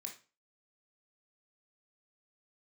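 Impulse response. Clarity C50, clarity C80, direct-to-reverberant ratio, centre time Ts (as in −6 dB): 9.0 dB, 15.5 dB, 1.0 dB, 18 ms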